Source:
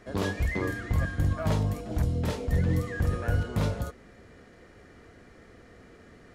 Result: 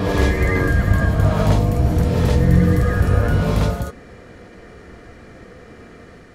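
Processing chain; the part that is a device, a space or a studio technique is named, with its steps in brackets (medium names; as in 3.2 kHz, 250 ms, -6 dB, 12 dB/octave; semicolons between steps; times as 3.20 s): reverse reverb (reverse; reverberation RT60 1.9 s, pre-delay 70 ms, DRR -1 dB; reverse); trim +7.5 dB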